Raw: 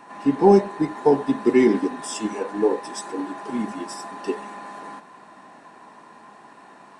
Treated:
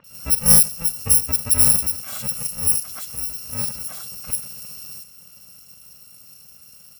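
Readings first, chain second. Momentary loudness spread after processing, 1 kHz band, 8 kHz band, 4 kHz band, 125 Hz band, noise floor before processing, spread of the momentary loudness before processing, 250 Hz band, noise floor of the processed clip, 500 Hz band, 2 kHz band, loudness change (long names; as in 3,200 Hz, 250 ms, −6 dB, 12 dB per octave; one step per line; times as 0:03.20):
21 LU, −13.5 dB, +20.5 dB, +11.5 dB, +3.0 dB, −48 dBFS, 18 LU, −14.0 dB, −47 dBFS, −20.0 dB, −4.0 dB, +5.0 dB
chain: samples in bit-reversed order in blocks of 128 samples
multiband delay without the direct sound lows, highs 40 ms, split 2,800 Hz
level +1 dB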